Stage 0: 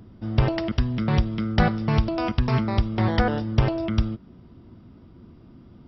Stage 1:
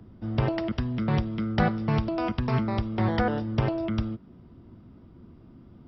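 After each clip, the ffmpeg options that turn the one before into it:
-filter_complex "[0:a]highshelf=f=3.6k:g=-8,acrossover=split=110|830[a][b][c];[a]alimiter=limit=-24dB:level=0:latency=1:release=447[d];[d][b][c]amix=inputs=3:normalize=0,volume=-2dB"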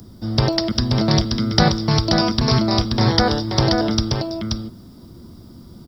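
-af "aexciter=amount=11.7:drive=6.8:freq=4.1k,aecho=1:1:530:0.596,volume=7dB"

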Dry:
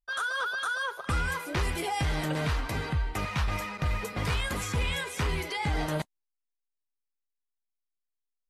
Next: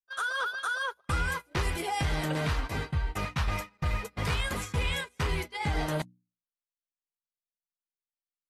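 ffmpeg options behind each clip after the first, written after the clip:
-af "agate=range=-27dB:threshold=-32dB:ratio=16:detection=peak,bandreject=f=60:t=h:w=6,bandreject=f=120:t=h:w=6,bandreject=f=180:t=h:w=6,bandreject=f=240:t=h:w=6,bandreject=f=300:t=h:w=6"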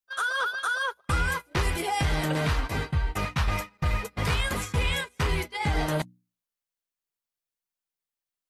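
-af "highshelf=f=4.8k:g=-11.5,crystalizer=i=2:c=0,volume=3.5dB"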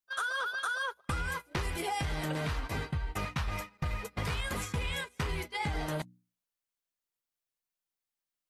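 -af "acompressor=threshold=-29dB:ratio=6,volume=-1.5dB"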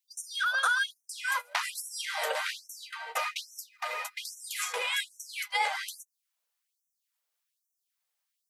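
-af "afftfilt=real='re*gte(b*sr/1024,410*pow(5600/410,0.5+0.5*sin(2*PI*1.2*pts/sr)))':imag='im*gte(b*sr/1024,410*pow(5600/410,0.5+0.5*sin(2*PI*1.2*pts/sr)))':win_size=1024:overlap=0.75,volume=7.5dB"

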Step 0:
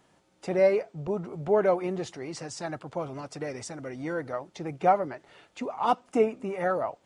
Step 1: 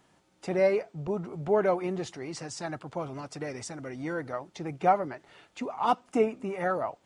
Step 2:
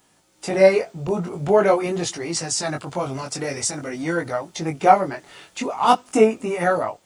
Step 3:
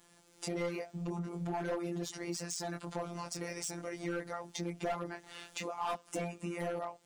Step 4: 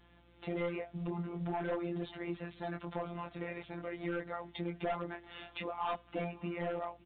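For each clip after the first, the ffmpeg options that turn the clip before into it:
-af "equalizer=f=530:t=o:w=0.69:g=-3"
-af "crystalizer=i=2.5:c=0,flanger=delay=17.5:depth=5.2:speed=0.46,dynaudnorm=f=160:g=5:m=7dB,volume=4.5dB"
-af "afftfilt=real='hypot(re,im)*cos(PI*b)':imag='0':win_size=1024:overlap=0.75,volume=17.5dB,asoftclip=hard,volume=-17.5dB,acompressor=threshold=-40dB:ratio=2.5"
-af "aeval=exprs='val(0)+0.000501*(sin(2*PI*60*n/s)+sin(2*PI*2*60*n/s)/2+sin(2*PI*3*60*n/s)/3+sin(2*PI*4*60*n/s)/4+sin(2*PI*5*60*n/s)/5)':c=same,aecho=1:1:560:0.0631" -ar 8000 -c:a pcm_mulaw

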